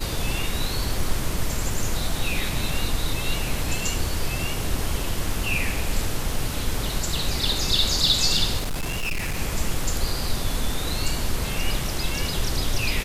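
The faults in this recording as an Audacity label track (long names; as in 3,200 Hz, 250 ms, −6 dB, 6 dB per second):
8.590000	9.390000	clipping −22.5 dBFS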